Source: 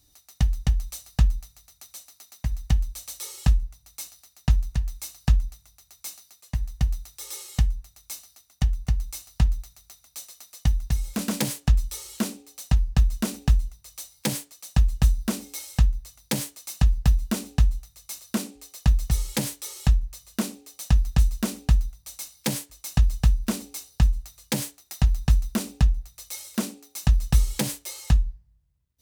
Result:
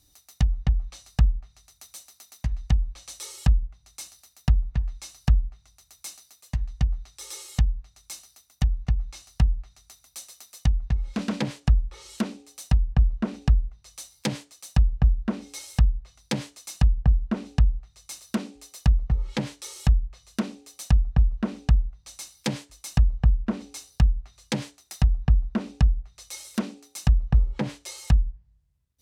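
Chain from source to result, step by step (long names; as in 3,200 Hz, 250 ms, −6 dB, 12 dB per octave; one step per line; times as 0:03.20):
treble cut that deepens with the level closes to 670 Hz, closed at −17 dBFS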